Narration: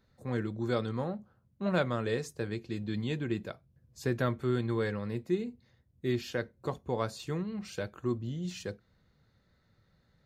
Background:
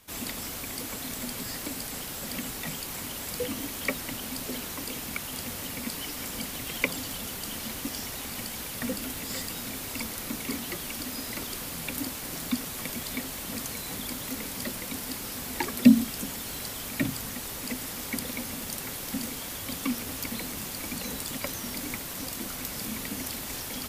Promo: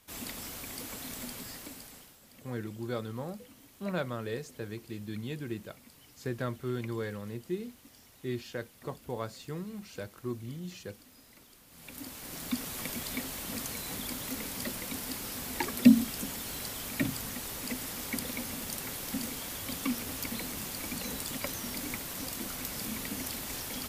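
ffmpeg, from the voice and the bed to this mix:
-filter_complex "[0:a]adelay=2200,volume=0.596[s0];[1:a]volume=5.01,afade=t=out:st=1.21:d=0.97:silence=0.149624,afade=t=in:st=11.68:d=1.05:silence=0.105925[s1];[s0][s1]amix=inputs=2:normalize=0"

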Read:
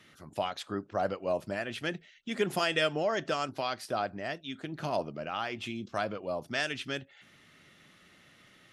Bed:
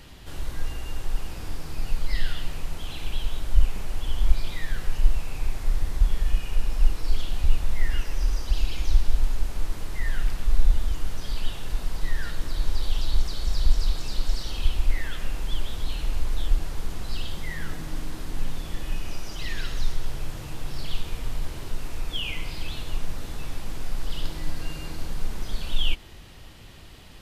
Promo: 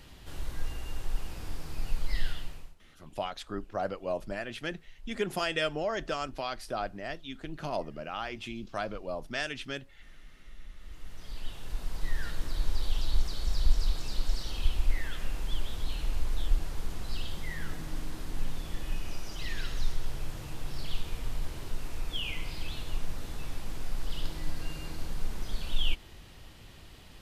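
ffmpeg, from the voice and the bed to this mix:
-filter_complex "[0:a]adelay=2800,volume=0.794[s0];[1:a]volume=8.91,afade=t=out:st=2.26:d=0.49:silence=0.0668344,afade=t=in:st=10.74:d=1.48:silence=0.0630957[s1];[s0][s1]amix=inputs=2:normalize=0"

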